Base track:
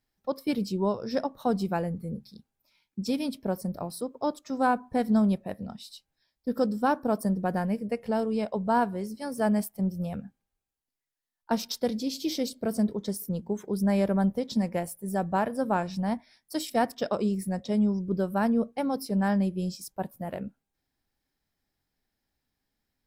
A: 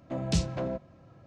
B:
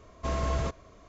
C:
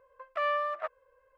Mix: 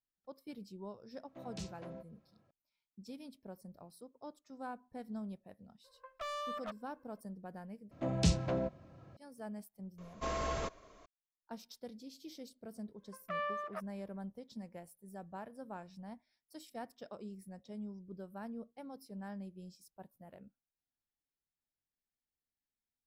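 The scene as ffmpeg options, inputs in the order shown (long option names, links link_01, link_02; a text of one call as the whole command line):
ffmpeg -i bed.wav -i cue0.wav -i cue1.wav -i cue2.wav -filter_complex "[1:a]asplit=2[link_01][link_02];[3:a]asplit=2[link_03][link_04];[0:a]volume=-20dB[link_05];[link_01]lowshelf=frequency=150:gain=-9.5[link_06];[link_03]asoftclip=type=hard:threshold=-31dB[link_07];[2:a]equalizer=frequency=85:width=0.51:gain=-11.5[link_08];[link_05]asplit=2[link_09][link_10];[link_09]atrim=end=7.914[link_11];[link_02]atrim=end=1.26,asetpts=PTS-STARTPTS,volume=-2dB[link_12];[link_10]atrim=start=9.166[link_13];[link_06]atrim=end=1.26,asetpts=PTS-STARTPTS,volume=-15dB,afade=type=in:duration=0.004:curve=hsin,afade=type=out:start_time=1.256:duration=0.004:curve=hsin,adelay=1250[link_14];[link_07]atrim=end=1.37,asetpts=PTS-STARTPTS,volume=-6dB,afade=type=in:duration=0.004:curve=hsin,afade=type=out:start_time=1.366:duration=0.004:curve=hsin,adelay=5840[link_15];[link_08]atrim=end=1.08,asetpts=PTS-STARTPTS,volume=-3dB,afade=type=in:duration=0.004:curve=hsin,afade=type=out:start_time=1.076:duration=0.004:curve=hsin,adelay=9980[link_16];[link_04]atrim=end=1.37,asetpts=PTS-STARTPTS,volume=-8.5dB,afade=type=in:duration=0.1,afade=type=out:start_time=1.27:duration=0.1,adelay=12930[link_17];[link_11][link_12]acrossfade=duration=0.004:curve1=hsin:curve2=hsin[link_18];[link_18][link_13]acrossfade=duration=0.004:curve1=hsin:curve2=hsin[link_19];[link_19][link_14][link_15][link_16][link_17]amix=inputs=5:normalize=0" out.wav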